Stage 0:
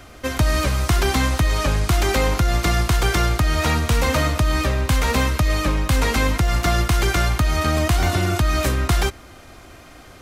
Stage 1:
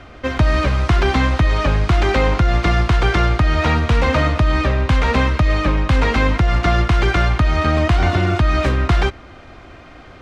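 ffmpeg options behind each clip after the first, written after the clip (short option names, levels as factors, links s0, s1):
-af "lowpass=3200,volume=1.5"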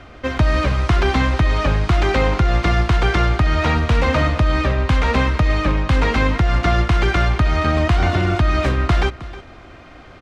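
-af "aecho=1:1:314:0.141,volume=0.891"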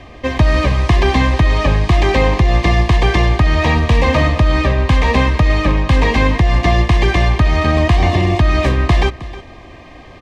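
-af "asuperstop=centerf=1400:order=12:qfactor=4.3,volume=1.58"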